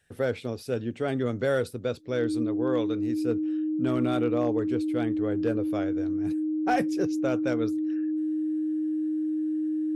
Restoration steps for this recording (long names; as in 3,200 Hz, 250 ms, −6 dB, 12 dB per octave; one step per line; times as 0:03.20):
clipped peaks rebuilt −17 dBFS
notch filter 310 Hz, Q 30